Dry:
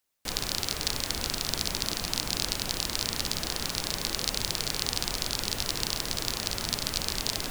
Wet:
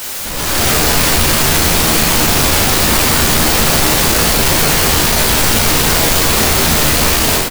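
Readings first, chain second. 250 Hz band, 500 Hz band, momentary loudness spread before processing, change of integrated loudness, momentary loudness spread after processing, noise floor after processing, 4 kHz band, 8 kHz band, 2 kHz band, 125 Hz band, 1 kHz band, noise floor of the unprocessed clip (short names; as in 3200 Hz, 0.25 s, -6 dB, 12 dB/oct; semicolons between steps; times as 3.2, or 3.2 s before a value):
+22.0 dB, +22.0 dB, 1 LU, +19.0 dB, 1 LU, -20 dBFS, +14.5 dB, +19.0 dB, +22.0 dB, +21.5 dB, +22.5 dB, -37 dBFS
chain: infinite clipping; AGC gain up to 12 dB; on a send: early reflections 13 ms -4 dB, 36 ms -4 dB; on the sum: gain +5.5 dB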